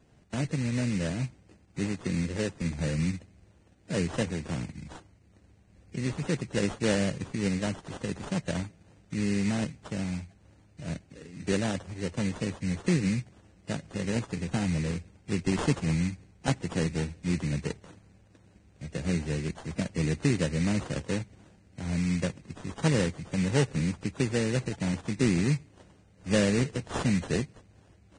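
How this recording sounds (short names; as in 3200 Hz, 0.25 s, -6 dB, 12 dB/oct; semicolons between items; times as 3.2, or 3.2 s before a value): aliases and images of a low sample rate 2300 Hz, jitter 20%; Vorbis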